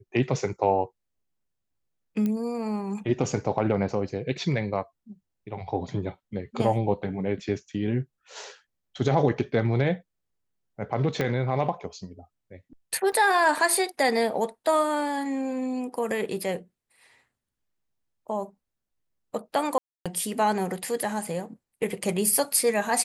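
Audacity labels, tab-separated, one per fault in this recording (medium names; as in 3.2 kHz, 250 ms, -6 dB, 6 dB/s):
2.260000	2.260000	pop -17 dBFS
11.210000	11.210000	pop -13 dBFS
13.120000	13.130000	dropout 6.2 ms
19.780000	20.060000	dropout 276 ms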